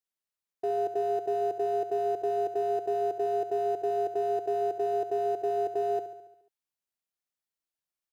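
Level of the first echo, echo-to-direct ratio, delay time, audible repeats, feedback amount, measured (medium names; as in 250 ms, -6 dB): -11.5 dB, -9.5 dB, 70 ms, 6, 60%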